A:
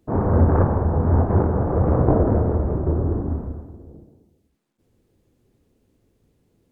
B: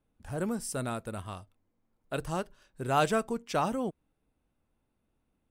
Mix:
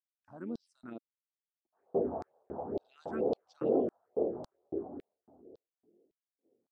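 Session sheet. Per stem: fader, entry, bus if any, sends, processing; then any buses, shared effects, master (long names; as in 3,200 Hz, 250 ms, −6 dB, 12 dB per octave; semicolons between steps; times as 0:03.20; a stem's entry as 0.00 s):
−12.0 dB, 1.65 s, no send, flat-topped bell 550 Hz +13 dB 1.3 octaves; brickwall limiter −5 dBFS, peak gain reduction 8 dB; micro pitch shift up and down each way 15 cents
−5.0 dB, 0.00 s, muted 0:00.98–0:02.71, no send, amplitude modulation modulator 89 Hz, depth 35%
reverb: not used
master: head-to-tape spacing loss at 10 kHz 38 dB; auto-filter high-pass square 1.8 Hz 290–4,400 Hz; all-pass phaser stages 4, 2.2 Hz, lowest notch 380–2,100 Hz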